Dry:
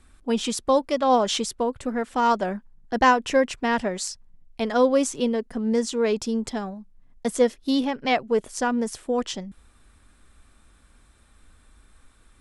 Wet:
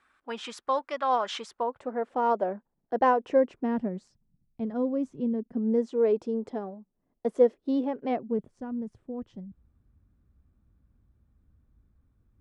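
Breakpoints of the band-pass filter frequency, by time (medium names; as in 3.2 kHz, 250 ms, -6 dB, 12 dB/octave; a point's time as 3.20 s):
band-pass filter, Q 1.3
1.34 s 1.4 kHz
2.09 s 530 Hz
3.20 s 530 Hz
4.10 s 160 Hz
5.27 s 160 Hz
5.91 s 440 Hz
8.00 s 440 Hz
8.58 s 110 Hz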